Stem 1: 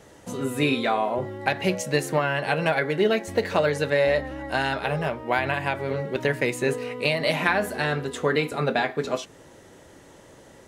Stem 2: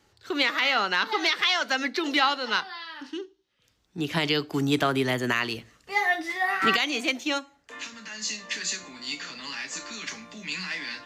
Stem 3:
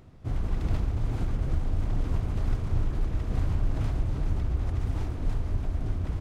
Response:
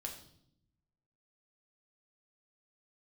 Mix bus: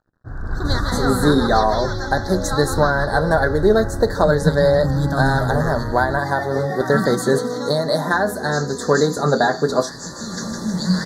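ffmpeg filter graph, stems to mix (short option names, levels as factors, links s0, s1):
-filter_complex "[0:a]adelay=650,volume=1[s0];[1:a]lowshelf=f=250:t=q:w=3:g=9.5,adelay=300,volume=0.376,asplit=2[s1][s2];[s2]volume=0.531[s3];[2:a]lowpass=f=1600:t=q:w=7,aeval=exprs='sgn(val(0))*max(abs(val(0))-0.00447,0)':c=same,volume=0.376,asplit=2[s4][s5];[s5]volume=0.473[s6];[3:a]atrim=start_sample=2205[s7];[s6][s7]afir=irnorm=-1:irlink=0[s8];[s3]aecho=0:1:157|314|471|628|785|942|1099|1256|1413|1570:1|0.6|0.36|0.216|0.13|0.0778|0.0467|0.028|0.0168|0.0101[s9];[s0][s1][s4][s8][s9]amix=inputs=5:normalize=0,dynaudnorm=f=180:g=5:m=6.31,asuperstop=centerf=2600:order=8:qfactor=1.2"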